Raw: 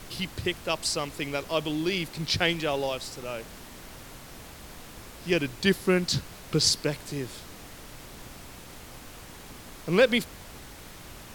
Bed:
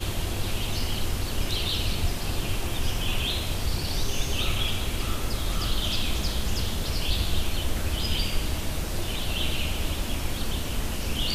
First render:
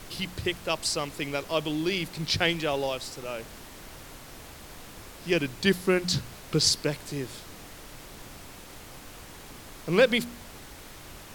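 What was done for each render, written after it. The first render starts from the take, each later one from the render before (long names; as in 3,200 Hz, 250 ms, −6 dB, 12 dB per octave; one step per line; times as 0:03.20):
hum removal 60 Hz, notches 4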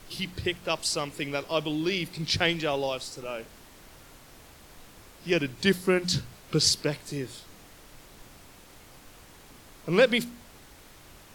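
noise reduction from a noise print 6 dB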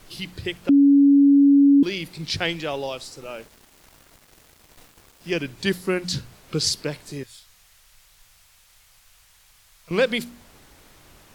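0:00.69–0:01.83: beep over 281 Hz −10.5 dBFS
0:03.22–0:05.37: centre clipping without the shift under −47.5 dBFS
0:07.23–0:09.91: guitar amp tone stack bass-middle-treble 10-0-10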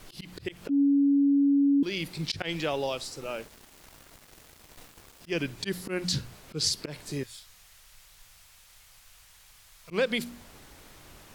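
volume swells 139 ms
downward compressor 2.5 to 1, threshold −25 dBFS, peak gain reduction 8 dB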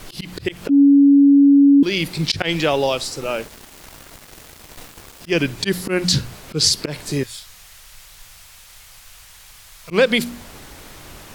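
level +11.5 dB
brickwall limiter −1 dBFS, peak gain reduction 1 dB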